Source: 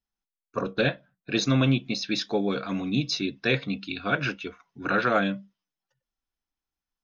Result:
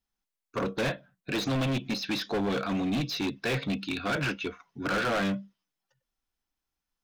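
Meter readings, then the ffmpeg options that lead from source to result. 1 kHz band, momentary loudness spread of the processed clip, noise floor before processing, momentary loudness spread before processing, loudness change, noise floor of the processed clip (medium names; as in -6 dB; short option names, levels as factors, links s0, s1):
-3.0 dB, 8 LU, under -85 dBFS, 13 LU, -3.5 dB, under -85 dBFS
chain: -filter_complex "[0:a]volume=26.6,asoftclip=hard,volume=0.0376,acrossover=split=3600[s0][s1];[s1]acompressor=threshold=0.00794:ratio=4:attack=1:release=60[s2];[s0][s2]amix=inputs=2:normalize=0,volume=1.41"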